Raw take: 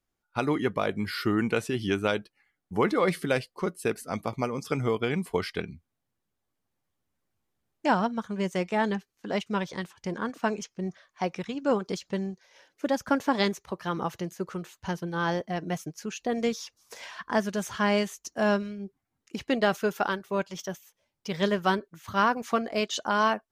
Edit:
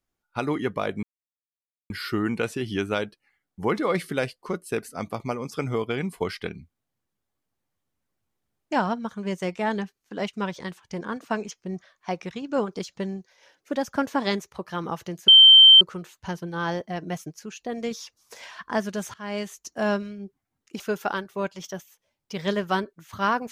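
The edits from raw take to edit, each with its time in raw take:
1.03 s: insert silence 0.87 s
14.41 s: add tone 3.12 kHz -7.5 dBFS 0.53 s
15.99–16.51 s: gain -3 dB
17.74–18.18 s: fade in, from -23.5 dB
19.40–19.75 s: delete

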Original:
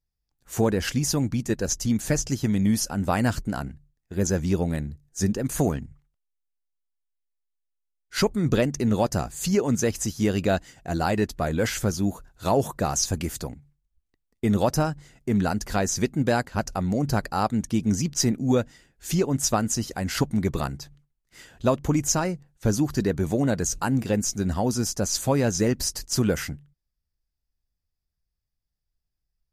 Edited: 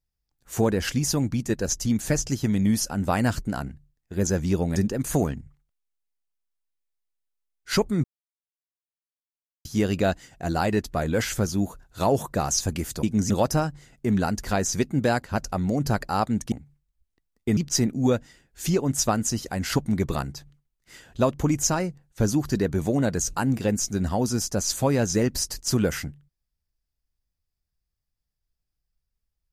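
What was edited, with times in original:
4.76–5.21 s: delete
8.49–10.10 s: mute
13.48–14.53 s: swap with 17.75–18.02 s

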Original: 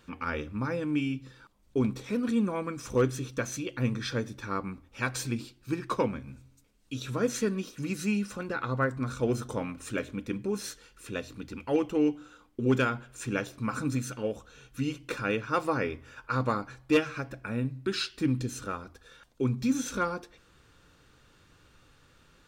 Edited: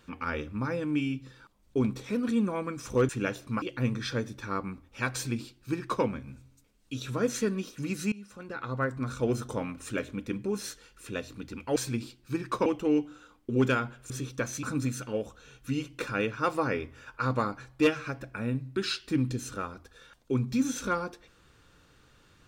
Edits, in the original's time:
3.09–3.62 s: swap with 13.20–13.73 s
5.14–6.04 s: copy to 11.76 s
8.12–9.38 s: fade in equal-power, from -21.5 dB

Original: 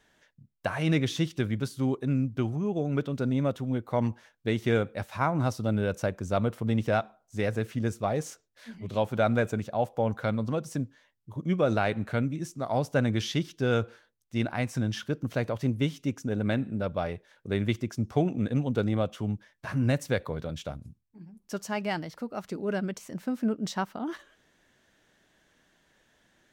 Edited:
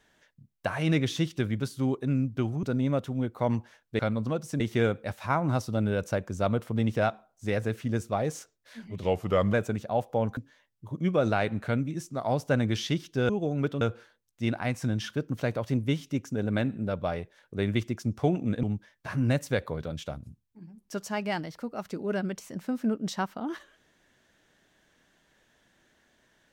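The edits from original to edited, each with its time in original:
2.63–3.15 s: move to 13.74 s
8.93–9.37 s: speed 86%
10.21–10.82 s: move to 4.51 s
18.56–19.22 s: delete

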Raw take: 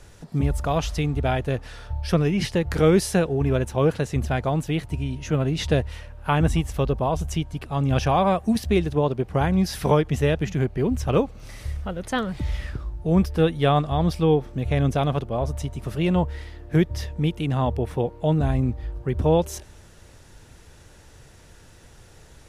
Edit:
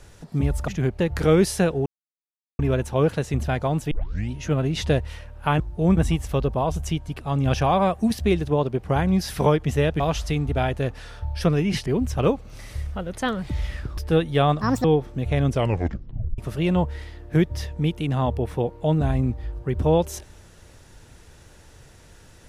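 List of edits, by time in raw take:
0.68–2.54 s: swap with 10.45–10.76 s
3.41 s: insert silence 0.73 s
4.73 s: tape start 0.40 s
12.87–13.24 s: move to 6.42 s
13.88–14.24 s: speed 154%
14.89 s: tape stop 0.89 s

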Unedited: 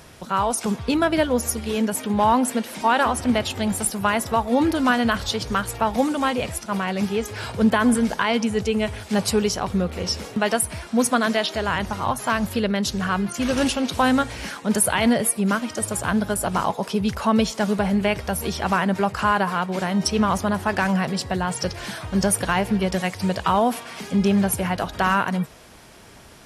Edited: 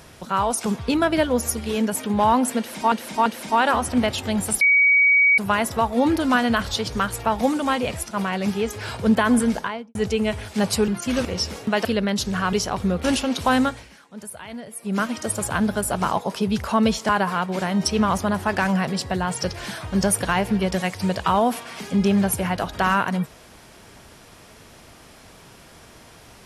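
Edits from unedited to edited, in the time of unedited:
2.58–2.92 s: loop, 3 plays
3.93 s: add tone 2.26 kHz -12.5 dBFS 0.77 s
8.04–8.50 s: studio fade out
9.43–9.94 s: swap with 13.20–13.57 s
10.54–12.52 s: delete
14.13–15.57 s: dip -17 dB, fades 0.29 s
17.62–19.29 s: delete

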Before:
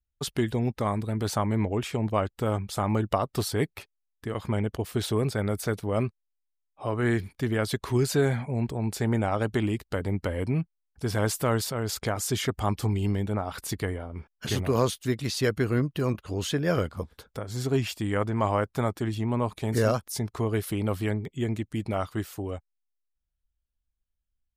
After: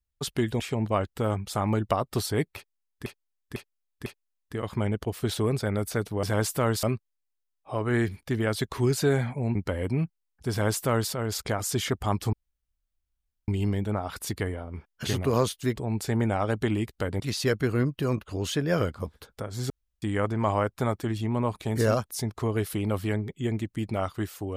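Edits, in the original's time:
0.60–1.82 s: delete
3.78–4.28 s: loop, 4 plays
8.67–10.12 s: move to 15.17 s
11.08–11.68 s: copy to 5.95 s
12.90 s: insert room tone 1.15 s
17.67–17.99 s: room tone

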